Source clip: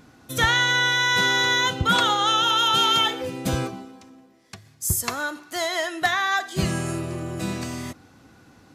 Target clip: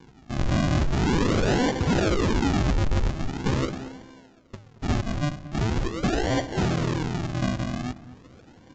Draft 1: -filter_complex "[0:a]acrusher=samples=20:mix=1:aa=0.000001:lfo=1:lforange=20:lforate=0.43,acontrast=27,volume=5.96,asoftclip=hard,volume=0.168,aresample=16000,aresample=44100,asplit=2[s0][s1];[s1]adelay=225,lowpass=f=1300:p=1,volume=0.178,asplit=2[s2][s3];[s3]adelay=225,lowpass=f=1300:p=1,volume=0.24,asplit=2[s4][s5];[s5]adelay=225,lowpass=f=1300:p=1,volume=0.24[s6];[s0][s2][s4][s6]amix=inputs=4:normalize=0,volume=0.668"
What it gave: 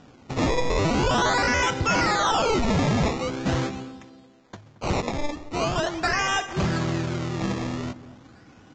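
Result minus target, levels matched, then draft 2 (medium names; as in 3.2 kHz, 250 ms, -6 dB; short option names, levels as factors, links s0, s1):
decimation with a swept rate: distortion -10 dB
-filter_complex "[0:a]acrusher=samples=67:mix=1:aa=0.000001:lfo=1:lforange=67:lforate=0.43,acontrast=27,volume=5.96,asoftclip=hard,volume=0.168,aresample=16000,aresample=44100,asplit=2[s0][s1];[s1]adelay=225,lowpass=f=1300:p=1,volume=0.178,asplit=2[s2][s3];[s3]adelay=225,lowpass=f=1300:p=1,volume=0.24,asplit=2[s4][s5];[s5]adelay=225,lowpass=f=1300:p=1,volume=0.24[s6];[s0][s2][s4][s6]amix=inputs=4:normalize=0,volume=0.668"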